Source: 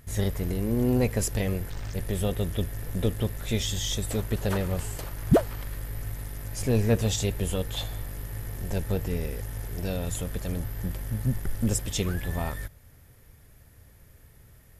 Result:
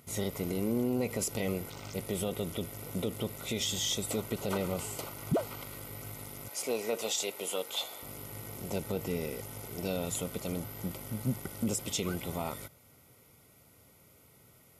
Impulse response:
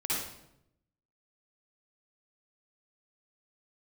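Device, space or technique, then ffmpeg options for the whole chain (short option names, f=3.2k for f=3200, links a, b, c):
PA system with an anti-feedback notch: -filter_complex "[0:a]asettb=1/sr,asplit=3[a][b][c];[a]atrim=end=6.484[d];[b]atrim=start=6.48:end=8.03,asetpts=PTS-STARTPTS,afade=t=in:d=0.004:c=qsin,afade=t=out:st=1.546:d=0.004:c=qsin,highpass=480[e];[c]atrim=start=8.026[f];[d][e]acrossfade=d=0.004:c1=hsin:c2=qsin[g];[g][f]acrossfade=d=0.004:c1=qsin:c2=hsin,highpass=180,asuperstop=centerf=1700:order=12:qfactor=4.9,alimiter=limit=-21.5dB:level=0:latency=1:release=60"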